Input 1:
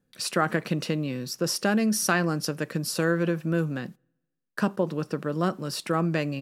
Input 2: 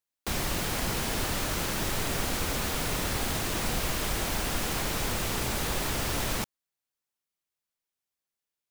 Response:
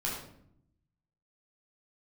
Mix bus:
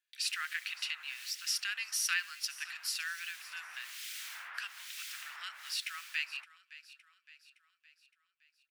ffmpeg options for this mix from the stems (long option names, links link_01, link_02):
-filter_complex "[0:a]highpass=frequency=2600:width_type=q:width=1.6,volume=2.5dB,asplit=3[link_01][link_02][link_03];[link_02]volume=-17dB[link_04];[1:a]acrossover=split=2100[link_05][link_06];[link_05]aeval=exprs='val(0)*(1-1/2+1/2*cos(2*PI*1.1*n/s))':channel_layout=same[link_07];[link_06]aeval=exprs='val(0)*(1-1/2-1/2*cos(2*PI*1.1*n/s))':channel_layout=same[link_08];[link_07][link_08]amix=inputs=2:normalize=0,volume=1dB[link_09];[link_03]apad=whole_len=383714[link_10];[link_09][link_10]sidechaincompress=threshold=-35dB:ratio=8:attack=16:release=1060[link_11];[link_04]aecho=0:1:565|1130|1695|2260|2825|3390|3955:1|0.51|0.26|0.133|0.0677|0.0345|0.0176[link_12];[link_01][link_11][link_12]amix=inputs=3:normalize=0,highpass=frequency=1500:width=0.5412,highpass=frequency=1500:width=1.3066,highshelf=frequency=2900:gain=-10"